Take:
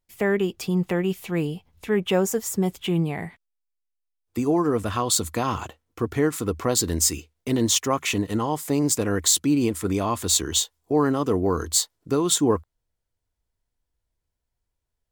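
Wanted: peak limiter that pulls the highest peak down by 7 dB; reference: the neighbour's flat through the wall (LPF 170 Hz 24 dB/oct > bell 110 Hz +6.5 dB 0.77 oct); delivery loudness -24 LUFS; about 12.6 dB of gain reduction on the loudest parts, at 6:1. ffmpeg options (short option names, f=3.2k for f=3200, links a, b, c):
-af "acompressor=threshold=-30dB:ratio=6,alimiter=limit=-23.5dB:level=0:latency=1,lowpass=f=170:w=0.5412,lowpass=f=170:w=1.3066,equalizer=f=110:t=o:w=0.77:g=6.5,volume=17.5dB"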